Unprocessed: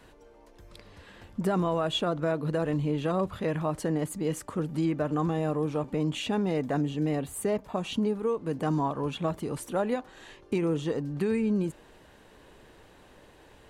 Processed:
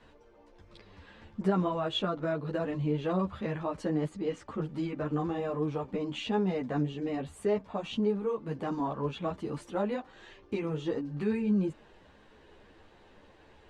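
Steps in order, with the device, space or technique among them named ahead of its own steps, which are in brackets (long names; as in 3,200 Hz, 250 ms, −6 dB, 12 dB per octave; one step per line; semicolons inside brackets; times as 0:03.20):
0:04.09–0:04.61: low-pass filter 6,500 Hz 12 dB per octave
string-machine ensemble chorus (string-ensemble chorus; low-pass filter 5,000 Hz 12 dB per octave)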